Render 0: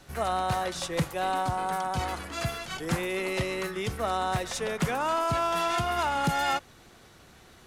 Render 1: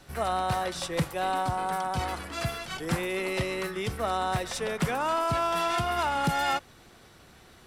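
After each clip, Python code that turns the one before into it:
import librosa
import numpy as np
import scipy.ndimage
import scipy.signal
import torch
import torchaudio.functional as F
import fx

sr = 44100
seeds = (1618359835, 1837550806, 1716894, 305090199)

y = fx.notch(x, sr, hz=6600.0, q=13.0)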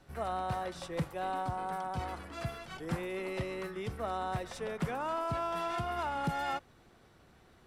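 y = fx.high_shelf(x, sr, hz=2200.0, db=-8.5)
y = y * 10.0 ** (-6.0 / 20.0)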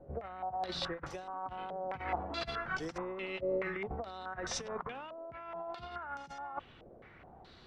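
y = fx.over_compress(x, sr, threshold_db=-40.0, ratio=-0.5)
y = fx.filter_held_lowpass(y, sr, hz=4.7, low_hz=560.0, high_hz=5900.0)
y = y * 10.0 ** (-2.0 / 20.0)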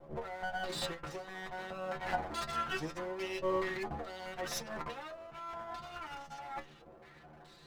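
y = fx.lower_of_two(x, sr, delay_ms=5.8)
y = fx.stiff_resonator(y, sr, f0_hz=75.0, decay_s=0.21, stiffness=0.002)
y = y * 10.0 ** (8.0 / 20.0)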